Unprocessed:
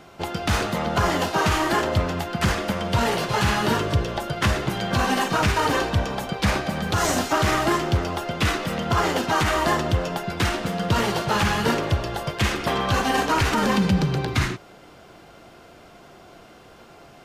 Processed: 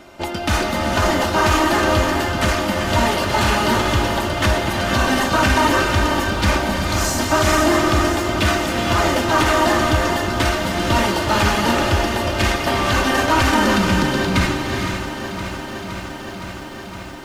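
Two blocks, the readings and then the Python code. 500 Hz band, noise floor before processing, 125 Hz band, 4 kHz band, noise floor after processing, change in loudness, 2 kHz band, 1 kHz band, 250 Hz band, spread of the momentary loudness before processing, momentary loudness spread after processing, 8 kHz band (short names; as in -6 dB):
+5.5 dB, -48 dBFS, +2.5 dB, +5.5 dB, -32 dBFS, +5.0 dB, +6.5 dB, +5.0 dB, +5.5 dB, 5 LU, 11 LU, +6.0 dB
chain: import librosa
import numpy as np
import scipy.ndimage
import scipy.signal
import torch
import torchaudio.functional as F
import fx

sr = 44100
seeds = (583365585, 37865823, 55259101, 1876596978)

p1 = fx.spec_box(x, sr, start_s=6.78, length_s=0.41, low_hz=220.0, high_hz=4000.0, gain_db=-9)
p2 = p1 + 0.58 * np.pad(p1, (int(3.3 * sr / 1000.0), 0))[:len(p1)]
p3 = np.clip(p2, -10.0 ** (-20.5 / 20.0), 10.0 ** (-20.5 / 20.0))
p4 = p2 + F.gain(torch.from_numpy(p3), -7.5).numpy()
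p5 = fx.rev_gated(p4, sr, seeds[0], gate_ms=500, shape='rising', drr_db=3.5)
y = fx.echo_crushed(p5, sr, ms=515, feedback_pct=80, bits=8, wet_db=-11.5)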